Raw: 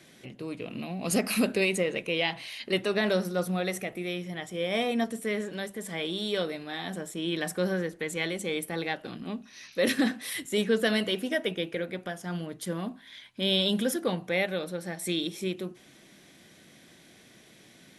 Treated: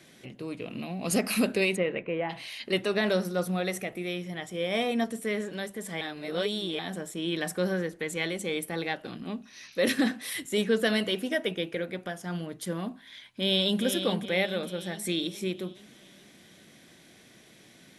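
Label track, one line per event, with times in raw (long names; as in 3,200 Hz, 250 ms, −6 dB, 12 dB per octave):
1.750000	2.290000	low-pass filter 3,700 Hz → 1,500 Hz 24 dB per octave
6.010000	6.790000	reverse
13.060000	13.830000	delay throw 420 ms, feedback 55%, level −8 dB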